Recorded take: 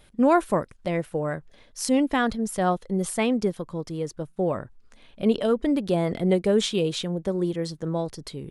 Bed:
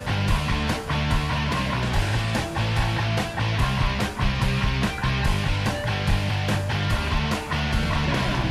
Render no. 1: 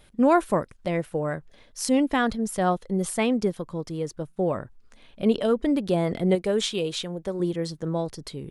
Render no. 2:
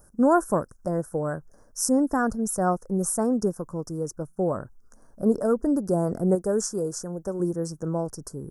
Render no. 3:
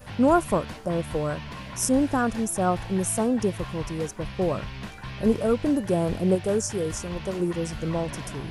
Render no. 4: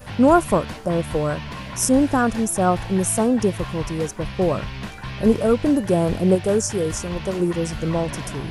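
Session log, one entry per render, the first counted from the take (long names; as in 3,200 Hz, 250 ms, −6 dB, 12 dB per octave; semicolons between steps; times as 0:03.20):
0:06.35–0:07.40: parametric band 150 Hz −6 dB 3 octaves
elliptic band-stop filter 1,500–5,600 Hz, stop band 40 dB; high-shelf EQ 6,800 Hz +9.5 dB
mix in bed −13.5 dB
level +5 dB; brickwall limiter −2 dBFS, peak gain reduction 0.5 dB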